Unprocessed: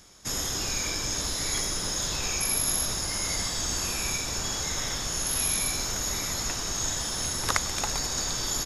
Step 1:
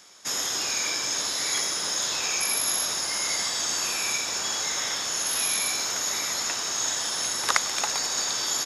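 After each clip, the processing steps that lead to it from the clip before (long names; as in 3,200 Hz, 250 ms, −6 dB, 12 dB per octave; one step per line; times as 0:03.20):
meter weighting curve A
level +3 dB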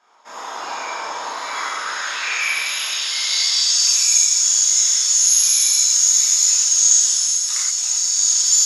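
automatic gain control gain up to 5.5 dB
band-pass filter sweep 910 Hz → 6,700 Hz, 0:01.21–0:04.10
reverb whose tail is shaped and stops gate 150 ms flat, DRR −7.5 dB
level +1.5 dB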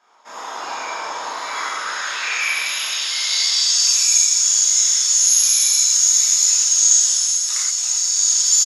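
echo with shifted repeats 204 ms, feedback 55%, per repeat −67 Hz, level −20.5 dB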